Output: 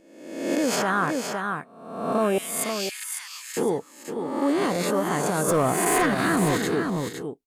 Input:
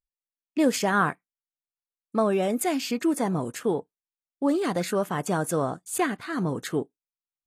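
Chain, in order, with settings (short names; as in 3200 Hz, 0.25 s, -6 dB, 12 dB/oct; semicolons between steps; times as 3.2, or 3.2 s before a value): spectral swells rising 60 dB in 0.91 s; 2.38–3.57 Bessel high-pass 2300 Hz, order 8; 5.48–6.58 sample leveller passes 2; on a send: echo 0.51 s -8 dB; on the sum: limiter -14 dBFS, peak gain reduction 6.5 dB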